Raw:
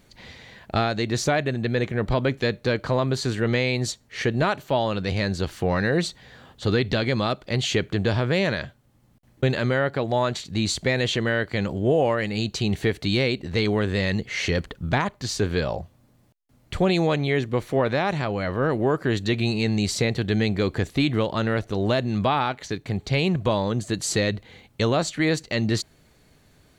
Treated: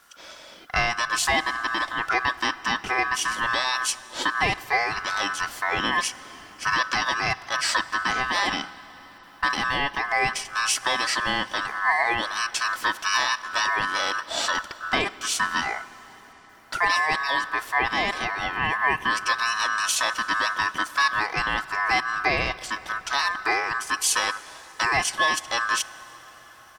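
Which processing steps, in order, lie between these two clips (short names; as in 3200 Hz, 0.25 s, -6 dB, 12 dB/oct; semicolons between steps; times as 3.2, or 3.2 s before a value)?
high shelf 5100 Hz +10 dB; comb 3 ms, depth 71%; ring modulator 1400 Hz; reverb RT60 5.9 s, pre-delay 13 ms, DRR 16.5 dB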